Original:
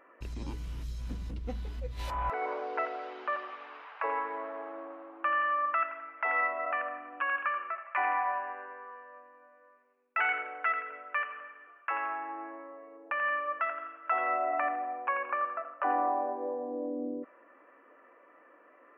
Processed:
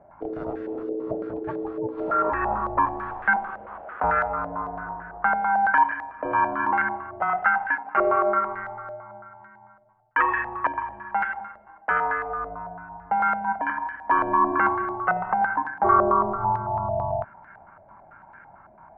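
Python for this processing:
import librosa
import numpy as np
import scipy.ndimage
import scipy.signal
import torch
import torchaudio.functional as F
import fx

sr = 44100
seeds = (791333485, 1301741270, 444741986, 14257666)

y = x * np.sin(2.0 * np.pi * 380.0 * np.arange(len(x)) / sr)
y = fx.filter_held_lowpass(y, sr, hz=9.0, low_hz=620.0, high_hz=1600.0)
y = F.gain(torch.from_numpy(y), 7.0).numpy()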